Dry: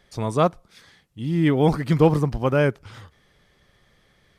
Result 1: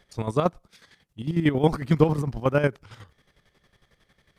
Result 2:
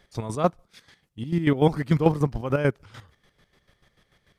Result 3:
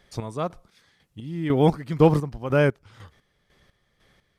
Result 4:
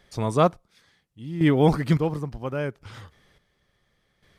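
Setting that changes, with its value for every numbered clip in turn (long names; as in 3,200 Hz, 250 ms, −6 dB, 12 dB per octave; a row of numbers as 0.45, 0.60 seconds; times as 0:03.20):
square-wave tremolo, speed: 11, 6.8, 2, 0.71 Hertz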